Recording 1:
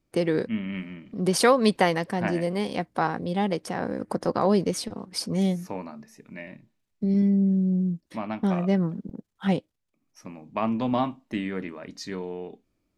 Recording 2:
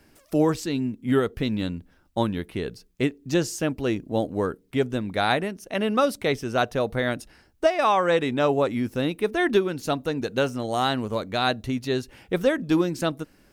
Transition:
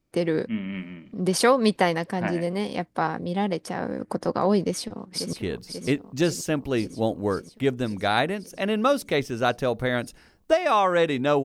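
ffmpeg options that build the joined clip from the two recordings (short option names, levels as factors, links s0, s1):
-filter_complex "[0:a]apad=whole_dur=11.44,atrim=end=11.44,atrim=end=5.332[s0];[1:a]atrim=start=2.458:end=8.57[s1];[s0][s1]acrossfade=d=0.004:c1=hsin:c2=hsin,asplit=2[s2][s3];[s3]afade=t=in:st=4.61:d=0.01,afade=t=out:st=5.33:d=0.01,aecho=0:1:540|1080|1620|2160|2700|3240|3780|4320|4860|5400|5940:0.398107|0.278675|0.195073|0.136551|0.0955855|0.0669099|0.0468369|0.0327858|0.0229501|0.0160651|0.0112455[s4];[s2][s4]amix=inputs=2:normalize=0"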